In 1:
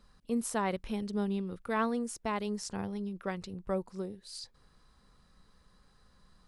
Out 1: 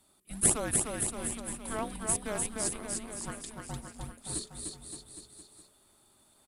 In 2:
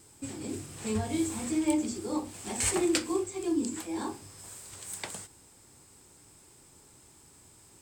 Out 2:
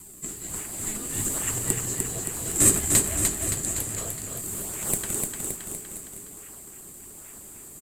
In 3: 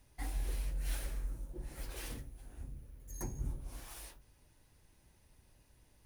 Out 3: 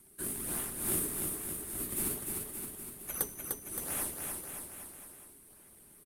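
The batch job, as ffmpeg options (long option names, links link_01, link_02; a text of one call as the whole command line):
ffmpeg -i in.wav -filter_complex "[0:a]highpass=frequency=1200:poles=1,aexciter=amount=7.8:drive=5.5:freq=8300,asplit=2[link_01][link_02];[link_02]acrusher=samples=39:mix=1:aa=0.000001:lfo=1:lforange=62.4:lforate=1.2,volume=-7.5dB[link_03];[link_01][link_03]amix=inputs=2:normalize=0,afreqshift=-430,asplit=2[link_04][link_05];[link_05]aecho=0:1:300|570|813|1032|1229:0.631|0.398|0.251|0.158|0.1[link_06];[link_04][link_06]amix=inputs=2:normalize=0,aresample=32000,aresample=44100" out.wav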